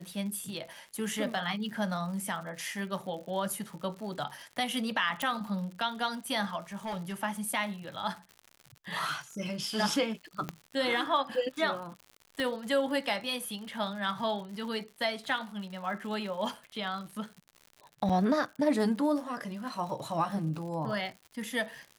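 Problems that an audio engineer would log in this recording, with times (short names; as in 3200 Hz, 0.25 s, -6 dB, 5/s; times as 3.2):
crackle 110/s -40 dBFS
5.22 pop
6.75–7.14 clipped -31.5 dBFS
10.49 pop -19 dBFS
12.4 pop -20 dBFS
18.09–18.1 gap 5.8 ms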